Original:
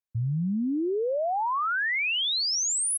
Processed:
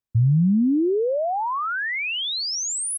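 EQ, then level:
low-shelf EQ 440 Hz +11 dB
0.0 dB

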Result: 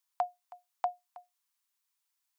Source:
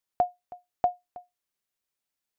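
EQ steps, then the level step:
four-pole ladder high-pass 840 Hz, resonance 55%
high-shelf EQ 2,100 Hz +12 dB
+3.0 dB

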